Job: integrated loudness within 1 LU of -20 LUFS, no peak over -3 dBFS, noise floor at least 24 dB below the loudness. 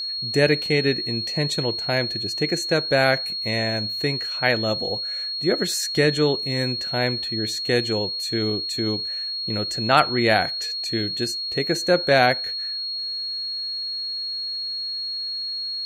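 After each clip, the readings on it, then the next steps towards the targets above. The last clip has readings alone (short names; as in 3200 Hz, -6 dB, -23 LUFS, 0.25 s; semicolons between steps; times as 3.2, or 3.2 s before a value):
steady tone 4300 Hz; tone level -26 dBFS; loudness -22.5 LUFS; peak -2.5 dBFS; loudness target -20.0 LUFS
-> notch 4300 Hz, Q 30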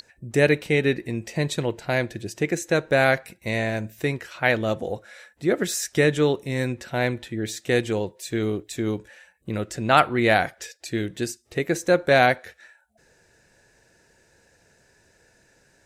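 steady tone none; loudness -24.0 LUFS; peak -3.5 dBFS; loudness target -20.0 LUFS
-> gain +4 dB; limiter -3 dBFS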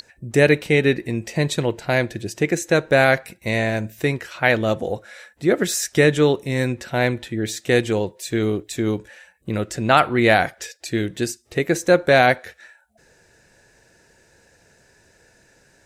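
loudness -20.0 LUFS; peak -3.0 dBFS; noise floor -57 dBFS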